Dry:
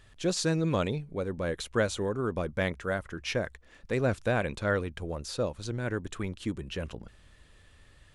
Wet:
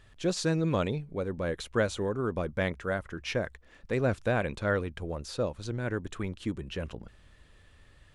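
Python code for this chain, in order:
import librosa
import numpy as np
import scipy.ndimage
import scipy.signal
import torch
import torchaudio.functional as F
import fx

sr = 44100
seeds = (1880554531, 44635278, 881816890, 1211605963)

y = fx.high_shelf(x, sr, hz=4500.0, db=-5.0)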